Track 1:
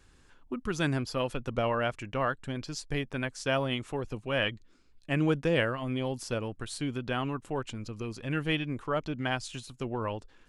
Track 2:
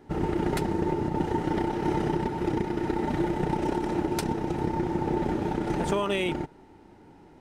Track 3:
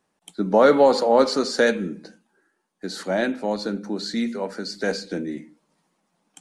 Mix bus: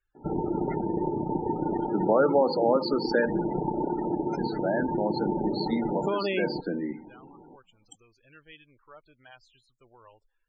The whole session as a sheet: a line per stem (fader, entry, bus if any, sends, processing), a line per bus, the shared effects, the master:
−17.0 dB, 0.00 s, no bus, no send, parametric band 210 Hz −14 dB 1.6 octaves
+3.0 dB, 0.15 s, bus A, no send, low-shelf EQ 75 Hz −4.5 dB
0.0 dB, 1.55 s, bus A, no send, no processing
bus A: 0.0 dB, downward compressor 1.5 to 1, threshold −29 dBFS, peak gain reduction 7 dB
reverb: not used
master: parametric band 71 Hz −10 dB 1.1 octaves; spectral peaks only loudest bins 32

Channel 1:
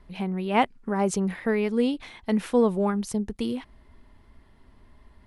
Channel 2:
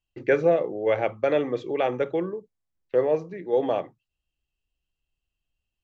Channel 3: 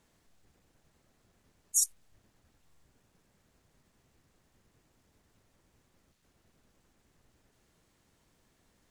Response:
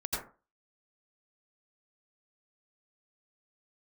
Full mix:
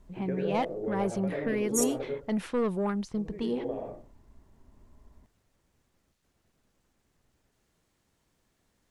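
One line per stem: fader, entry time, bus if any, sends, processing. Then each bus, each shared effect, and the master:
−3.0 dB, 0.00 s, no send, de-essing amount 85%; low-pass that shuts in the quiet parts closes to 820 Hz, open at −21.5 dBFS; soft clipping −19.5 dBFS, distortion −12 dB
−8.5 dB, 0.00 s, muted 0:02.10–0:03.17, send −6.5 dB, downward compressor 4 to 1, threshold −26 dBFS, peak gain reduction 10 dB; tilt shelving filter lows +8 dB, about 790 Hz; automatic ducking −10 dB, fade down 0.30 s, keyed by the first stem
−4.0 dB, 0.00 s, send −21 dB, no processing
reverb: on, RT60 0.35 s, pre-delay 77 ms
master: no processing

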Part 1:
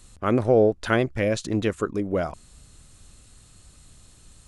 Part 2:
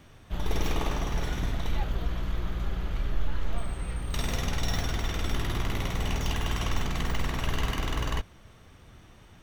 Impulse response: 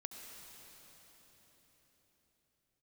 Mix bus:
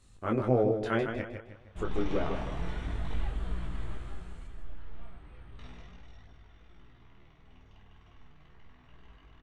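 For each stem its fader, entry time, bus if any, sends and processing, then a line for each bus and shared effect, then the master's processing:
−4.0 dB, 0.00 s, muted 0:01.22–0:01.76, no send, echo send −7 dB, high-shelf EQ 5,500 Hz −11 dB
0:03.94 −2.5 dB → 0:04.51 −11.5 dB → 0:05.54 −11.5 dB → 0:06.26 −24 dB, 1.45 s, no send, no echo send, low-pass filter 3,100 Hz 12 dB per octave; notch filter 540 Hz, Q 12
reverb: not used
echo: repeating echo 156 ms, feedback 38%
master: micro pitch shift up and down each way 11 cents

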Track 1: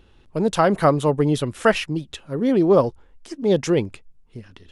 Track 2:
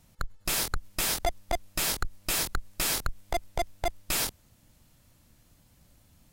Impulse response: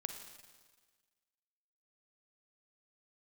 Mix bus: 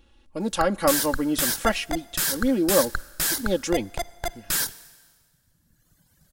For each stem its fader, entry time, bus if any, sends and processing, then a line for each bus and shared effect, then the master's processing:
−8.0 dB, 0.00 s, send −20.5 dB, comb filter 3.6 ms, depth 78%
−3.5 dB, 0.40 s, send −6.5 dB, thirty-one-band graphic EQ 160 Hz +7 dB, 1,600 Hz +11 dB, 2,500 Hz −6 dB; reverb reduction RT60 1.8 s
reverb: on, RT60 1.5 s, pre-delay 38 ms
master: high-shelf EQ 3,900 Hz +7.5 dB

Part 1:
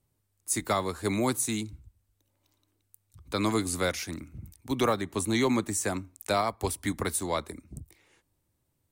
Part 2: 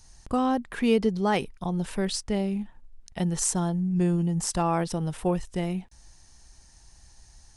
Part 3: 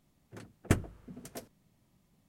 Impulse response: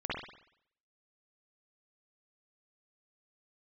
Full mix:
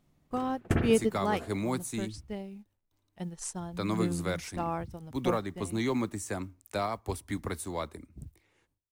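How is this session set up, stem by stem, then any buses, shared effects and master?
−5.0 dB, 0.45 s, no send, noise gate with hold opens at −57 dBFS; low-shelf EQ 160 Hz +4 dB; noise that follows the level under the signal 31 dB
+1.0 dB, 0.00 s, no send, low-shelf EQ 460 Hz −3 dB; bit reduction 9 bits; expander for the loud parts 2.5 to 1, over −43 dBFS
+2.0 dB, 0.00 s, send −9.5 dB, leveller curve on the samples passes 1; automatic ducking −16 dB, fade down 1.05 s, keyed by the second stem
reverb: on, RT60 0.70 s, pre-delay 47 ms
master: high-shelf EQ 3,700 Hz −6 dB

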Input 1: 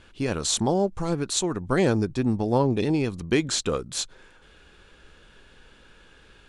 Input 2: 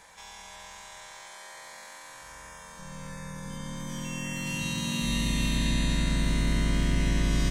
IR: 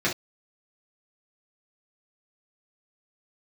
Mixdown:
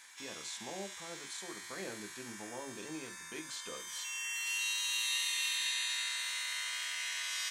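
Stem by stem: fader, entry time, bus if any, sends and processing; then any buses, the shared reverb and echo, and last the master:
−16.5 dB, 0.00 s, send −18 dB, high-pass filter 750 Hz 6 dB per octave; brickwall limiter −19 dBFS, peak gain reduction 9 dB
+1.0 dB, 0.00 s, no send, Bessel high-pass filter 1,800 Hz, order 4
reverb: on, pre-delay 3 ms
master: no processing

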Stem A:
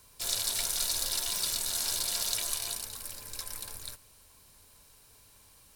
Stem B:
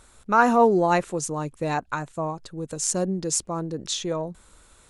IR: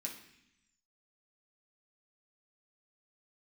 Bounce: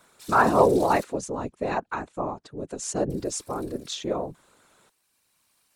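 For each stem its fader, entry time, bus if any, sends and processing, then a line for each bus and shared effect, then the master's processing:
−3.0 dB, 0.00 s, muted 0:01.04–0:03.10, send −11 dB, parametric band 410 Hz −13.5 dB 2.3 octaves; log-companded quantiser 6 bits; automatic ducking −6 dB, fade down 0.35 s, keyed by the second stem
−3.0 dB, 0.00 s, no send, parametric band 3,400 Hz +3.5 dB 3 octaves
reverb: on, RT60 0.75 s, pre-delay 3 ms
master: high-pass filter 270 Hz 12 dB per octave; spectral tilt −2.5 dB per octave; random phases in short frames

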